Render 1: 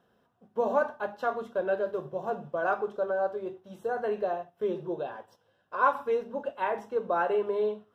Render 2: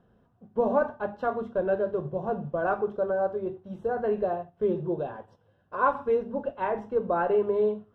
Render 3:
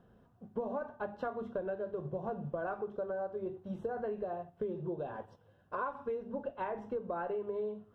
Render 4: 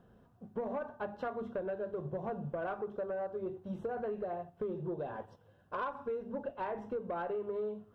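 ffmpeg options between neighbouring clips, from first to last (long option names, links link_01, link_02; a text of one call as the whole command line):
ffmpeg -i in.wav -af "aemphasis=mode=reproduction:type=riaa" out.wav
ffmpeg -i in.wav -af "acompressor=threshold=-34dB:ratio=10" out.wav
ffmpeg -i in.wav -af "asoftclip=type=tanh:threshold=-29dB,volume=1dB" out.wav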